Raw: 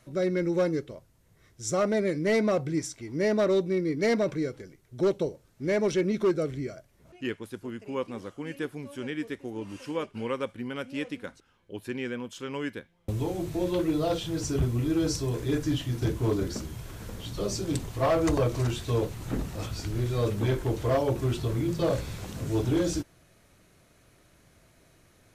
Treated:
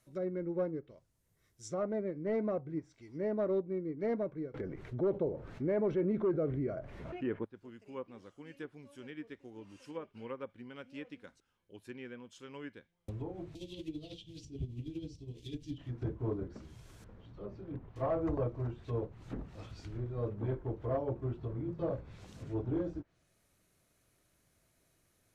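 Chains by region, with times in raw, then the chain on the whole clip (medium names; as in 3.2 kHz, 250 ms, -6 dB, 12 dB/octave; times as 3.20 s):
4.54–7.45 s: tone controls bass -2 dB, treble -6 dB + level flattener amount 70%
13.55–15.78 s: companding laws mixed up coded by A + FFT filter 280 Hz 0 dB, 1.4 kHz -24 dB, 3 kHz +13 dB + tremolo 12 Hz, depth 53%
17.04–17.96 s: low-pass 1.6 kHz + transient shaper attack -6 dB, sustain -1 dB
whole clip: low-pass that closes with the level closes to 1.1 kHz, closed at -25 dBFS; treble shelf 7.9 kHz +11 dB; upward expansion 1.5:1, over -35 dBFS; trim -7 dB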